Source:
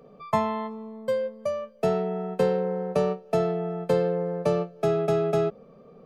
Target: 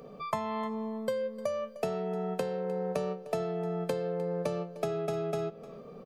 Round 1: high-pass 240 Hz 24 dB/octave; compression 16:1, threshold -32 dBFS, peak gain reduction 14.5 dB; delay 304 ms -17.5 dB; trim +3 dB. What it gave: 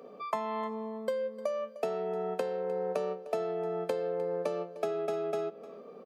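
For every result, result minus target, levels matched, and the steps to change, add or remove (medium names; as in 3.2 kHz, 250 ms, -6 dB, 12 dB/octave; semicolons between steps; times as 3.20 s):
250 Hz band -5.0 dB; 8 kHz band -4.5 dB
remove: high-pass 240 Hz 24 dB/octave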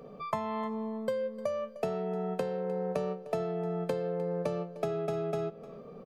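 8 kHz band -5.0 dB
add after compression: treble shelf 3.4 kHz +6.5 dB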